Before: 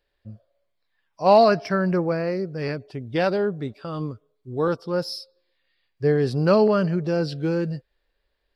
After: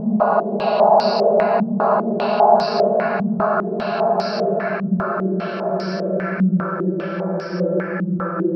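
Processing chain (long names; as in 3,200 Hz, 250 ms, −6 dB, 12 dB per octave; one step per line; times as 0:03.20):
extreme stretch with random phases 13×, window 1.00 s, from 0:01.31
low-pass on a step sequencer 5 Hz 210–5,000 Hz
level −3 dB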